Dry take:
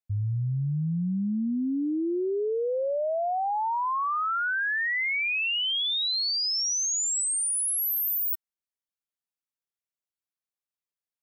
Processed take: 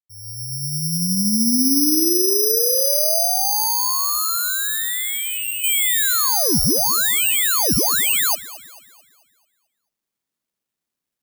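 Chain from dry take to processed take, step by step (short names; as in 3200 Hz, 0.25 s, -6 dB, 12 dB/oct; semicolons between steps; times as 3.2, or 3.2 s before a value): opening faded in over 1.78 s; 3.26–5.64 high shelf 2200 Hz -12 dB; echo with dull and thin repeats by turns 0.11 s, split 1400 Hz, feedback 67%, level -14 dB; careless resampling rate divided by 8×, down none, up zero stuff; bell 220 Hz +9 dB 1.7 oct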